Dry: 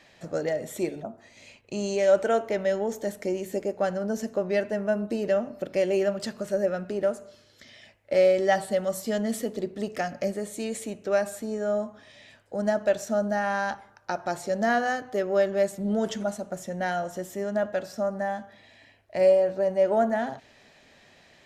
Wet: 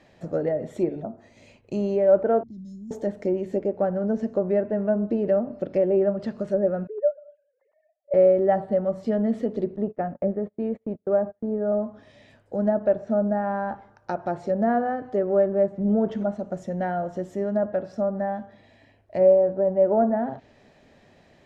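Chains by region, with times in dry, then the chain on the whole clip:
0:02.43–0:02.91: inverse Chebyshev band-stop filter 440–2,700 Hz + downward compressor 2 to 1, threshold −47 dBFS
0:06.87–0:08.14: three sine waves on the formant tracks + low-pass that shuts in the quiet parts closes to 1,000 Hz, open at −20.5 dBFS + high-shelf EQ 2,600 Hz −11 dB
0:09.76–0:11.72: low-pass filter 1,400 Hz + noise gate −39 dBFS, range −31 dB
whole clip: low-shelf EQ 470 Hz −2.5 dB; treble cut that deepens with the level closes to 1,400 Hz, closed at −23.5 dBFS; tilt shelving filter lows +8 dB

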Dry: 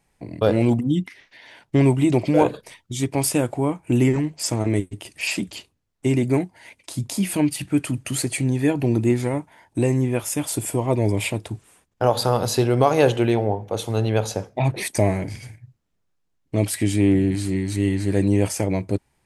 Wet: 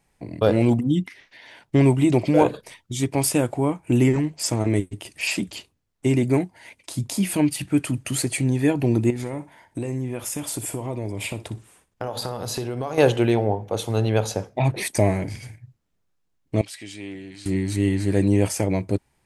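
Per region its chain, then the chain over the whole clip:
0:09.10–0:12.98: downward compressor 5 to 1, threshold −25 dBFS + flutter between parallel walls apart 10.6 metres, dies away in 0.25 s
0:16.61–0:17.46: resonant band-pass 4,400 Hz, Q 0.91 + spectral tilt −2.5 dB per octave
whole clip: no processing

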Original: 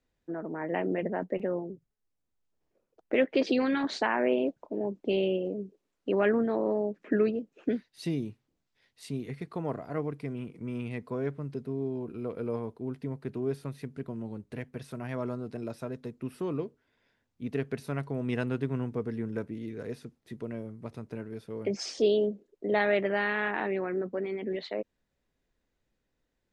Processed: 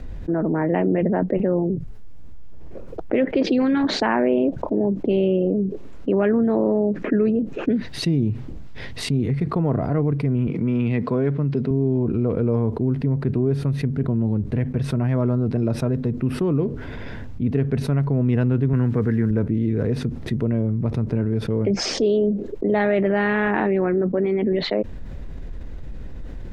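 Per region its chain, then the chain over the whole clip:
0:10.47–0:11.71: band-pass filter 150–4,600 Hz + high-shelf EQ 2,500 Hz +9 dB
0:18.73–0:19.31: high-pass filter 77 Hz + parametric band 1,700 Hz +12 dB 0.86 octaves + bit-depth reduction 10 bits, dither none
whole clip: RIAA equalisation playback; envelope flattener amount 70%

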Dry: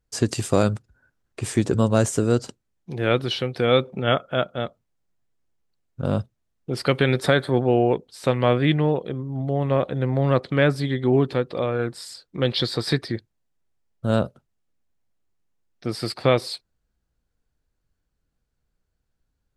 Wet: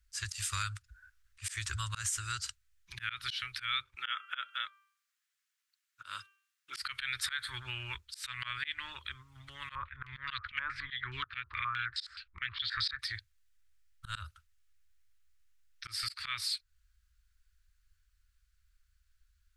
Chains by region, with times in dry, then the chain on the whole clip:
0:03.94–0:06.78: high-pass filter 220 Hz 24 dB per octave + hum removal 393.4 Hz, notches 8
0:09.75–0:12.99: Butterworth band-reject 710 Hz, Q 1.9 + low-shelf EQ 210 Hz +5 dB + low-pass on a step sequencer 9.5 Hz 890–4,000 Hz
whole clip: inverse Chebyshev band-stop filter 140–770 Hz, stop band 40 dB; volume swells 179 ms; downward compressor 2.5 to 1, threshold −41 dBFS; level +5.5 dB

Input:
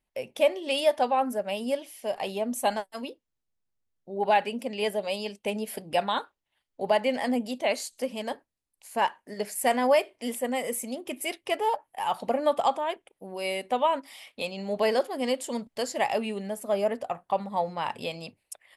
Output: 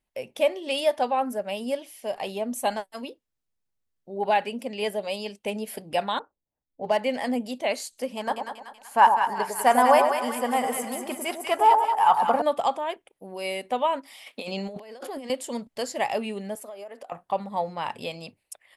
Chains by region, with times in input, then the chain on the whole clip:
0:06.19–0:06.97: running median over 9 samples + low-pass that shuts in the quiet parts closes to 410 Hz, open at −24 dBFS + notch filter 380 Hz, Q 11
0:08.17–0:12.42: flat-topped bell 1,100 Hz +10 dB 1.3 octaves + echo with a time of its own for lows and highs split 1,000 Hz, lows 101 ms, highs 190 ms, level −5 dB
0:14.26–0:15.30: high-pass filter 160 Hz 24 dB per octave + compressor whose output falls as the input rises −37 dBFS
0:16.55–0:17.12: high-pass filter 390 Hz + downward compressor 16 to 1, threshold −36 dBFS
whole clip: no processing

